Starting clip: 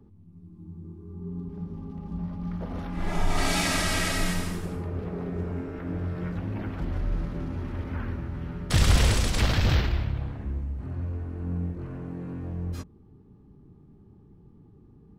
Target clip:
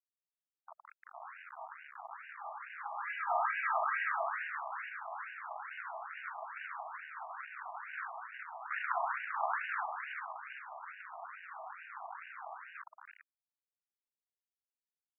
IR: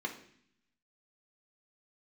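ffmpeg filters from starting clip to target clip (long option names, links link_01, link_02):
-filter_complex "[0:a]asplit=6[link_01][link_02][link_03][link_04][link_05][link_06];[link_02]adelay=391,afreqshift=-140,volume=-8.5dB[link_07];[link_03]adelay=782,afreqshift=-280,volume=-16.2dB[link_08];[link_04]adelay=1173,afreqshift=-420,volume=-24dB[link_09];[link_05]adelay=1564,afreqshift=-560,volume=-31.7dB[link_10];[link_06]adelay=1955,afreqshift=-700,volume=-39.5dB[link_11];[link_01][link_07][link_08][link_09][link_10][link_11]amix=inputs=6:normalize=0,acrossover=split=660|1700[link_12][link_13][link_14];[link_14]acompressor=threshold=-42dB:ratio=6[link_15];[link_12][link_13][link_15]amix=inputs=3:normalize=0,aeval=exprs='val(0)*gte(abs(val(0)),0.0178)':channel_layout=same,acrossover=split=2500[link_16][link_17];[link_17]acompressor=threshold=-49dB:ratio=4:attack=1:release=60[link_18];[link_16][link_18]amix=inputs=2:normalize=0,afftfilt=real='re*between(b*sr/1024,860*pow(2100/860,0.5+0.5*sin(2*PI*2.3*pts/sr))/1.41,860*pow(2100/860,0.5+0.5*sin(2*PI*2.3*pts/sr))*1.41)':imag='im*between(b*sr/1024,860*pow(2100/860,0.5+0.5*sin(2*PI*2.3*pts/sr))/1.41,860*pow(2100/860,0.5+0.5*sin(2*PI*2.3*pts/sr))*1.41)':win_size=1024:overlap=0.75,volume=4dB"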